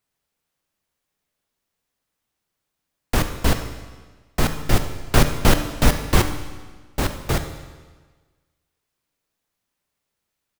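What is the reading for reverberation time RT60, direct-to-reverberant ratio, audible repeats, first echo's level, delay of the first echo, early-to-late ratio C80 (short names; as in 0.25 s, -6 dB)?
1.4 s, 7.5 dB, 1, -16.0 dB, 71 ms, 10.5 dB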